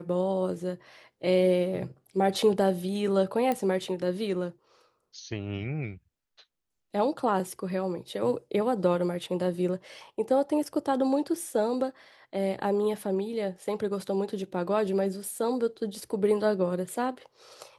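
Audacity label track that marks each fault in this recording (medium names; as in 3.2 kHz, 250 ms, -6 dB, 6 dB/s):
3.520000	3.520000	pop -16 dBFS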